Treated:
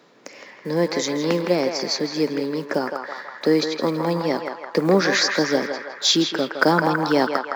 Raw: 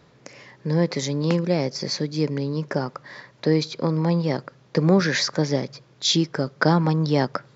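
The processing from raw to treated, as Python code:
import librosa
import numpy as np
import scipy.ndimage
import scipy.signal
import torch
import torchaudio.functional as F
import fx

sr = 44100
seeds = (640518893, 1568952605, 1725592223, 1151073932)

y = fx.block_float(x, sr, bits=7)
y = scipy.signal.sosfilt(scipy.signal.butter(4, 220.0, 'highpass', fs=sr, output='sos'), y)
y = fx.echo_banded(y, sr, ms=163, feedback_pct=70, hz=1300.0, wet_db=-3)
y = y * librosa.db_to_amplitude(3.0)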